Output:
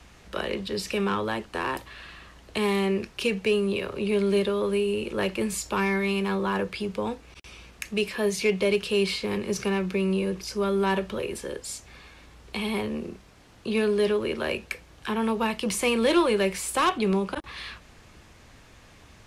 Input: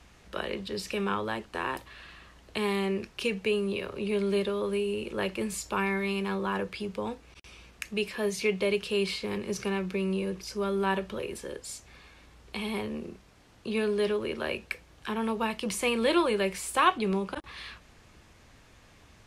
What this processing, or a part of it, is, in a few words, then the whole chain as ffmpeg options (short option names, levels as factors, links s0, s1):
one-band saturation: -filter_complex "[0:a]acrossover=split=460|4700[s0][s1][s2];[s1]asoftclip=type=tanh:threshold=0.0631[s3];[s0][s3][s2]amix=inputs=3:normalize=0,volume=1.68"